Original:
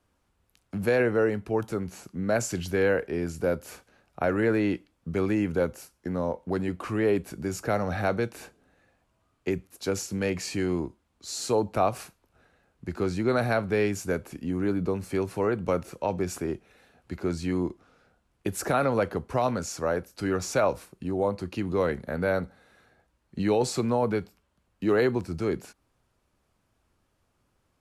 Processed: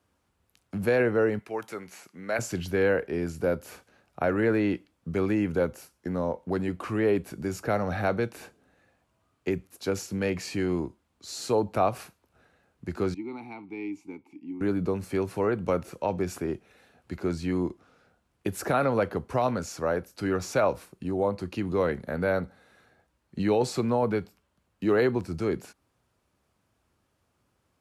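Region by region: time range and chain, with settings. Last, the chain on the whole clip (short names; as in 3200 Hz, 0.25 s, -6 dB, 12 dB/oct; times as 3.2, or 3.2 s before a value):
1.39–2.39 HPF 790 Hz 6 dB/oct + bell 2100 Hz +6.5 dB 0.42 oct
13.14–14.61 vowel filter u + high shelf 3600 Hz +8 dB
whole clip: HPF 59 Hz; dynamic EQ 7700 Hz, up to -5 dB, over -50 dBFS, Q 0.87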